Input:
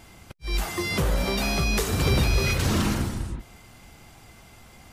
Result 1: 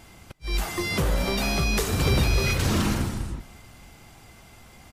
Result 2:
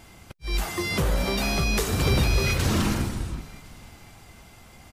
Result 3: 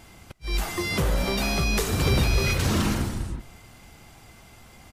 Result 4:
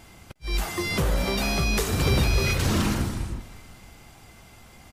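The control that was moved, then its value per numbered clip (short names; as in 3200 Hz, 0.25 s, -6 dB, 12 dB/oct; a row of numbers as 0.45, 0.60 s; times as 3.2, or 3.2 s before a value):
frequency-shifting echo, time: 0.239, 0.531, 0.138, 0.356 s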